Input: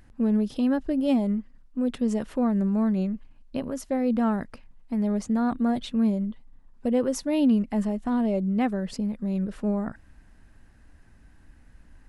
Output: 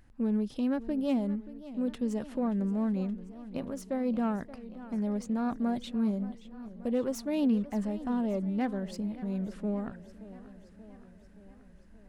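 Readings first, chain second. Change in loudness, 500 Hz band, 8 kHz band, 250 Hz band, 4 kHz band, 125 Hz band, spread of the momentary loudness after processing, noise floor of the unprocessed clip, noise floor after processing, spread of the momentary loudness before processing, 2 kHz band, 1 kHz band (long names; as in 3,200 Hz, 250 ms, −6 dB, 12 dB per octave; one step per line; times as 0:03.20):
−6.0 dB, −5.5 dB, −7.5 dB, −6.0 dB, −6.5 dB, −6.0 dB, 15 LU, −55 dBFS, −55 dBFS, 9 LU, −6.0 dB, −6.0 dB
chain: phase distortion by the signal itself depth 0.073 ms
feedback echo with a swinging delay time 577 ms, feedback 63%, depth 133 cents, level −16 dB
level −6 dB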